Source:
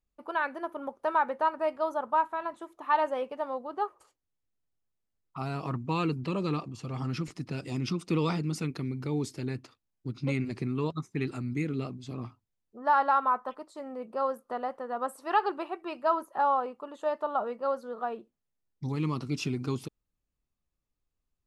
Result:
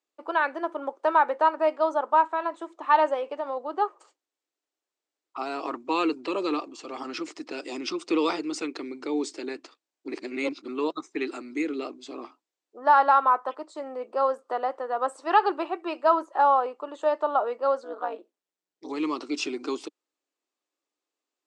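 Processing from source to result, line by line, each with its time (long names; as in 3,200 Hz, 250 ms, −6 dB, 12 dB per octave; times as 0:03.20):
0:03.14–0:03.57: downward compressor 3 to 1, threshold −32 dBFS
0:10.08–0:10.68: reverse
0:17.84–0:18.90: amplitude modulation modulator 180 Hz, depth 70%
whole clip: Chebyshev band-pass filter 300–8,100 Hz, order 4; level +6 dB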